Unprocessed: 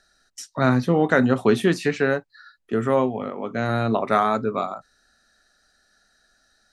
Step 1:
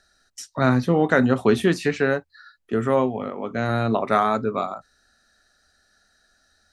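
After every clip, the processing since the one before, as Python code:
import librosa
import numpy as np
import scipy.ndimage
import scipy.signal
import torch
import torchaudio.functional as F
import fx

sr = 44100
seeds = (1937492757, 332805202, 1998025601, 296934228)

y = fx.peak_eq(x, sr, hz=77.0, db=12.5, octaves=0.22)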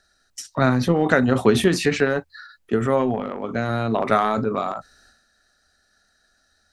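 y = fx.transient(x, sr, attack_db=6, sustain_db=10)
y = y * 10.0 ** (-2.0 / 20.0)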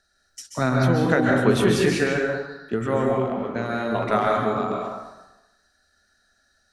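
y = fx.rev_plate(x, sr, seeds[0], rt60_s=0.97, hf_ratio=0.7, predelay_ms=120, drr_db=-0.5)
y = y * 10.0 ** (-4.5 / 20.0)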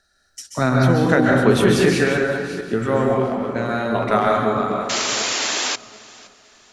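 y = fx.reverse_delay_fb(x, sr, ms=373, feedback_pct=43, wet_db=-13.5)
y = fx.spec_paint(y, sr, seeds[1], shape='noise', start_s=4.89, length_s=0.87, low_hz=250.0, high_hz=7500.0, level_db=-26.0)
y = fx.echo_feedback(y, sr, ms=516, feedback_pct=39, wet_db=-22.0)
y = y * 10.0 ** (3.5 / 20.0)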